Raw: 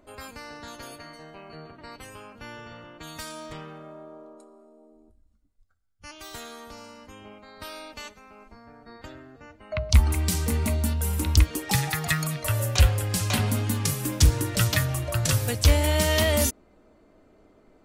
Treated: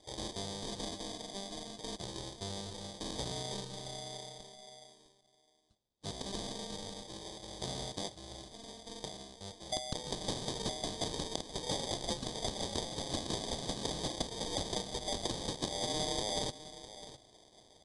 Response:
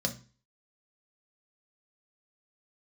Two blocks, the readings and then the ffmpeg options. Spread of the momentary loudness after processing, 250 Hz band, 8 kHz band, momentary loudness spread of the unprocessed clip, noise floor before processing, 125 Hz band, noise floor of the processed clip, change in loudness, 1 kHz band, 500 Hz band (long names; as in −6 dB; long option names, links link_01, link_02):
12 LU, −10.0 dB, −10.5 dB, 21 LU, −59 dBFS, −20.5 dB, −68 dBFS, −15.0 dB, −7.0 dB, −8.0 dB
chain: -af "highpass=660,acrusher=samples=32:mix=1:aa=0.000001,acompressor=threshold=-37dB:ratio=6,highshelf=frequency=3000:width_type=q:width=3:gain=8,aecho=1:1:656:0.178,asoftclip=type=tanh:threshold=-20dB,aresample=22050,aresample=44100,volume=2dB"